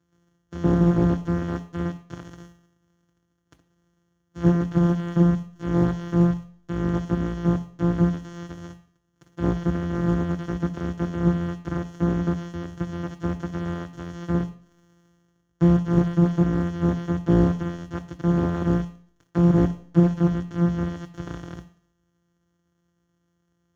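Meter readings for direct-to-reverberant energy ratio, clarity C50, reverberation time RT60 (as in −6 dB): 8.0 dB, 16.5 dB, 0.55 s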